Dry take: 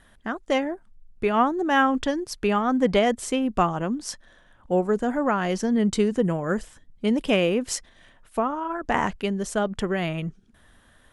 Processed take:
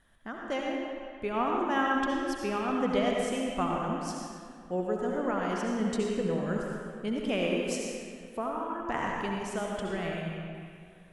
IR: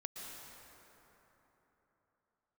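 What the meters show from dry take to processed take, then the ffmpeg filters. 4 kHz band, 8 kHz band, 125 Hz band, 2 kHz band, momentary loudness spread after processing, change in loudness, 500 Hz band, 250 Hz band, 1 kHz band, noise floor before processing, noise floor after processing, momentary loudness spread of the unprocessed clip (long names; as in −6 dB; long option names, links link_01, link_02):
−6.5 dB, −8.0 dB, −7.0 dB, −6.0 dB, 11 LU, −7.0 dB, −6.5 dB, −7.0 dB, −6.5 dB, −57 dBFS, −51 dBFS, 11 LU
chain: -filter_complex "[1:a]atrim=start_sample=2205,asetrate=79380,aresample=44100[link_01];[0:a][link_01]afir=irnorm=-1:irlink=0"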